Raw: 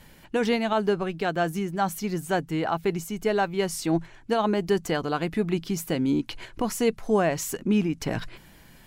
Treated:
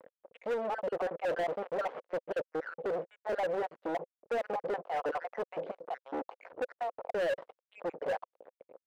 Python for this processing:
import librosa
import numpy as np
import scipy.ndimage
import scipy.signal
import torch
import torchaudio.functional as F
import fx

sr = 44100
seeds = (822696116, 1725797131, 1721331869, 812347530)

p1 = fx.spec_dropout(x, sr, seeds[0], share_pct=53)
p2 = fx.level_steps(p1, sr, step_db=12)
p3 = p1 + F.gain(torch.from_numpy(p2), 2.0).numpy()
p4 = fx.quant_companded(p3, sr, bits=2, at=(1.3, 2.0))
p5 = fx.air_absorb(p4, sr, metres=450.0)
p6 = fx.fuzz(p5, sr, gain_db=38.0, gate_db=-45.0)
p7 = fx.ladder_bandpass(p6, sr, hz=570.0, resonance_pct=70)
p8 = np.clip(p7, -10.0 ** (-24.5 / 20.0), 10.0 ** (-24.5 / 20.0))
y = F.gain(torch.from_numpy(p8), -4.0).numpy()